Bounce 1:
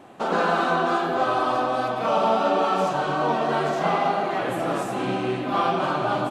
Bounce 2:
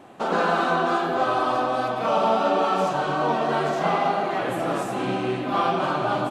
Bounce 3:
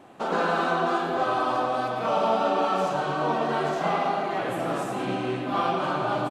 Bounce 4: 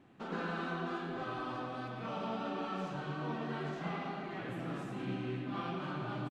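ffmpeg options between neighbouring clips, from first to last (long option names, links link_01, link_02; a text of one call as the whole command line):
ffmpeg -i in.wav -af anull out.wav
ffmpeg -i in.wav -af "aecho=1:1:113:0.316,volume=-3dB" out.wav
ffmpeg -i in.wav -af "firequalizer=gain_entry='entry(140,0);entry(610,-15);entry(1800,-6);entry(9500,-17)':delay=0.05:min_phase=1,volume=-4.5dB" out.wav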